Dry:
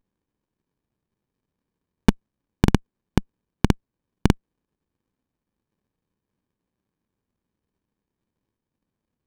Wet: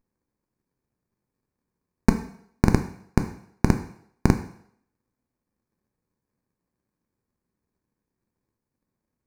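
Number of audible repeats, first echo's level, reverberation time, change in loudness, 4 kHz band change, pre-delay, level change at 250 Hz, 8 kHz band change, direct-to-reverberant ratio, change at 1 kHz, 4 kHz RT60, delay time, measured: no echo audible, no echo audible, 0.65 s, −0.5 dB, −7.5 dB, 5 ms, −0.5 dB, 0.0 dB, 6.5 dB, 0.0 dB, 0.65 s, no echo audible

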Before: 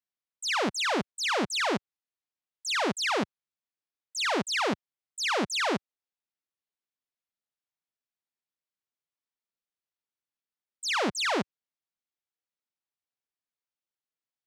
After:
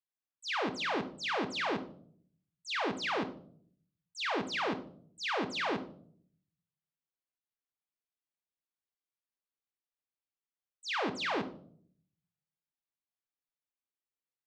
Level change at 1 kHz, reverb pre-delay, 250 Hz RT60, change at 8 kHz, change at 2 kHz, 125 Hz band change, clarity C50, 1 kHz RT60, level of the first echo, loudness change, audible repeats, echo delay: −5.0 dB, 3 ms, 0.95 s, −15.0 dB, −5.5 dB, −5.5 dB, 14.0 dB, 0.45 s, no echo audible, −6.0 dB, no echo audible, no echo audible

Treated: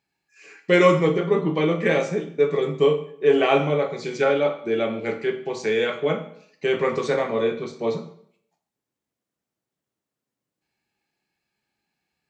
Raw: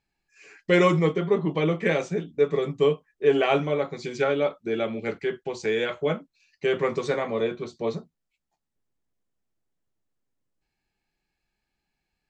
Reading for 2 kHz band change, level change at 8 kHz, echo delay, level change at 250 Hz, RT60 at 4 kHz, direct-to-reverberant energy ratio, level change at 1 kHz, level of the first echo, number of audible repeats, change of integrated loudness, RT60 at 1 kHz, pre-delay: +3.0 dB, can't be measured, no echo audible, +2.5 dB, 0.55 s, 5.5 dB, +3.5 dB, no echo audible, no echo audible, +3.0 dB, 0.65 s, 13 ms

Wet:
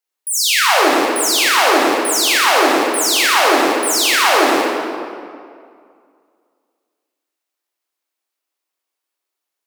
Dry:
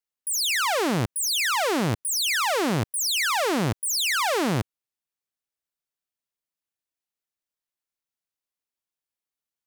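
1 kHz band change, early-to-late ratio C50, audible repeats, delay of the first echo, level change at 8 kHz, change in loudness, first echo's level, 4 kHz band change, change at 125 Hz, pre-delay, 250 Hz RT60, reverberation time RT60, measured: +13.0 dB, −1.0 dB, no echo audible, no echo audible, +9.0 dB, +10.0 dB, no echo audible, +10.0 dB, below −15 dB, 18 ms, 2.3 s, 2.2 s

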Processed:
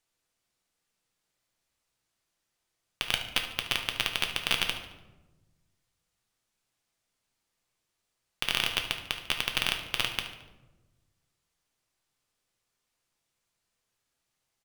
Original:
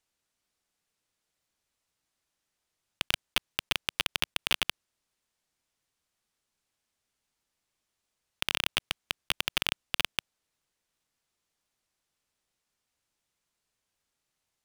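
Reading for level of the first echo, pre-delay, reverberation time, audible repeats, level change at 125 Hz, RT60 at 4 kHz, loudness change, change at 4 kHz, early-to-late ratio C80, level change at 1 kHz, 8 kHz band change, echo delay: −13.0 dB, 6 ms, 1.1 s, 1, +3.0 dB, 0.65 s, +1.5 dB, +1.5 dB, 10.5 dB, +1.5 dB, +1.5 dB, 73 ms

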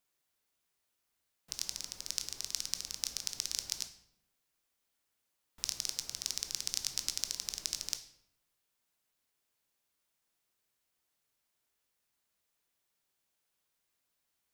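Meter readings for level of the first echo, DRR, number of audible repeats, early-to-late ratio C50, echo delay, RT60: no echo audible, 8.0 dB, no echo audible, 11.5 dB, no echo audible, 0.75 s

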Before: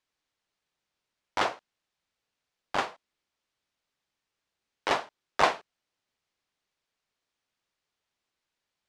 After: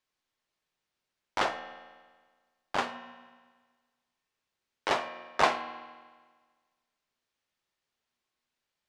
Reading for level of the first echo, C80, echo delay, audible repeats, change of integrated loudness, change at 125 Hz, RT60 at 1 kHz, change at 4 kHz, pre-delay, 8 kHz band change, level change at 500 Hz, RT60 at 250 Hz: no echo audible, 11.0 dB, no echo audible, no echo audible, −1.5 dB, −1.5 dB, 1.5 s, −1.0 dB, 4 ms, −1.5 dB, −1.0 dB, 1.5 s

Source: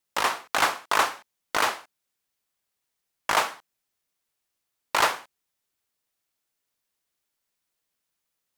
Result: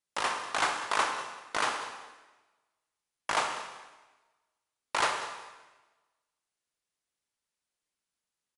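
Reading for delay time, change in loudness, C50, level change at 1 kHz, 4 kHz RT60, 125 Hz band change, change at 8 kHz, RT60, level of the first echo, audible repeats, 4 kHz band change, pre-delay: 194 ms, −6.0 dB, 6.0 dB, −5.0 dB, 1.1 s, −5.0 dB, −5.5 dB, 1.2 s, −15.0 dB, 1, −5.0 dB, 26 ms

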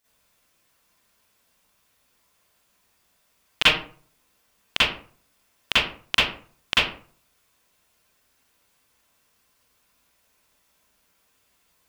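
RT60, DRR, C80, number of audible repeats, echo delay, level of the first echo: 0.45 s, −12.0 dB, 6.5 dB, no echo audible, no echo audible, no echo audible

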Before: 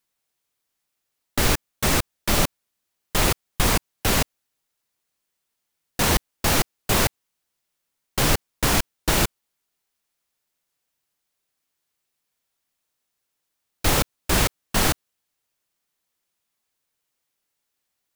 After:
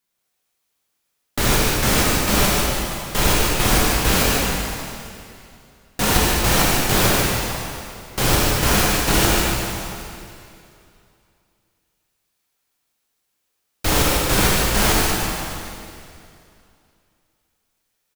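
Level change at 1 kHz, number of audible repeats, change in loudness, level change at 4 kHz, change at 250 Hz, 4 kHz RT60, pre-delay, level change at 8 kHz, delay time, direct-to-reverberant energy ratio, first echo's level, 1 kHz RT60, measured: +6.0 dB, 1, +4.5 dB, +5.5 dB, +6.0 dB, 2.4 s, 6 ms, +5.5 dB, 150 ms, −6.0 dB, −5.0 dB, 2.5 s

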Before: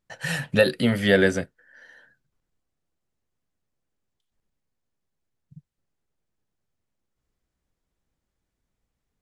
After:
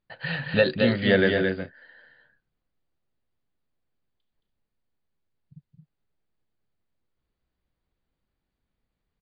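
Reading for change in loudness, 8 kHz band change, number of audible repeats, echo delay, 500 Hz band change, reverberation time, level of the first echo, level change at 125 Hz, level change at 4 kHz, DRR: −1.5 dB, below −35 dB, 2, 221 ms, −0.5 dB, no reverb audible, −5.0 dB, −1.0 dB, −1.0 dB, no reverb audible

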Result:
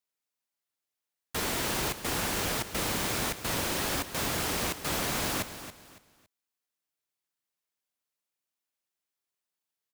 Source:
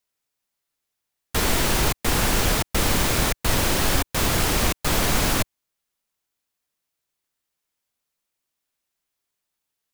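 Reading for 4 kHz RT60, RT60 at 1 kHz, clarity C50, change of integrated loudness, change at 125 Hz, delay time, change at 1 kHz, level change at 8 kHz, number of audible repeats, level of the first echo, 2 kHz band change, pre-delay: no reverb audible, no reverb audible, no reverb audible, −8.5 dB, −12.5 dB, 279 ms, −8.0 dB, −7.5 dB, 3, −12.0 dB, −7.5 dB, no reverb audible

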